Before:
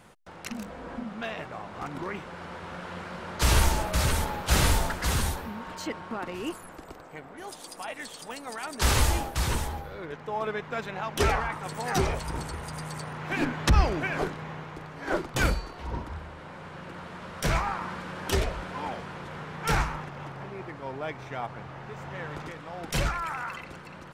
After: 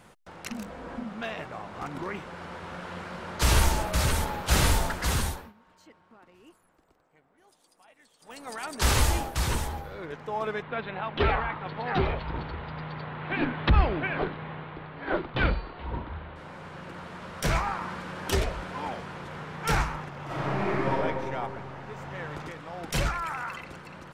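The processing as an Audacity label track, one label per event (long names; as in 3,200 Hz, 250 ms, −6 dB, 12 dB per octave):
5.100000	8.630000	duck −21 dB, fades 0.43 s equal-power
10.620000	16.360000	Butterworth low-pass 4,000 Hz 48 dB per octave
20.250000	20.920000	thrown reverb, RT60 2.2 s, DRR −11.5 dB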